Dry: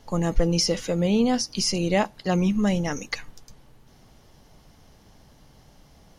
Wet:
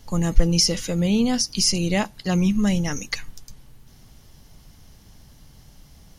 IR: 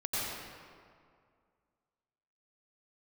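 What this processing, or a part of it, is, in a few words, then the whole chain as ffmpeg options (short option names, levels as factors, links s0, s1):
smiley-face EQ: -af "lowshelf=f=170:g=4.5,equalizer=f=590:t=o:w=2.3:g=-6.5,highshelf=f=7300:g=8,volume=1.33"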